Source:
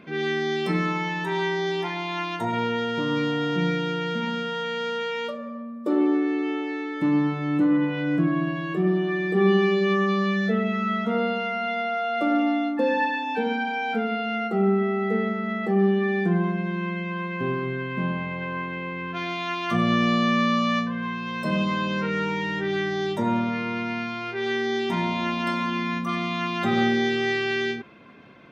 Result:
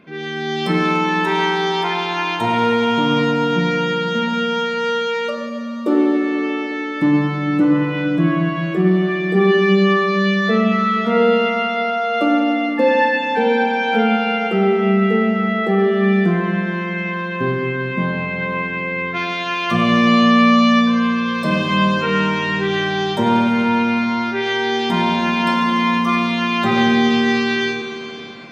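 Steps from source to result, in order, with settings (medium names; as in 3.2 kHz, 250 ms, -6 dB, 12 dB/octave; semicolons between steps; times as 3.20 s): level rider gain up to 8.5 dB; Schroeder reverb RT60 3.9 s, combs from 32 ms, DRR 3.5 dB; trim -1 dB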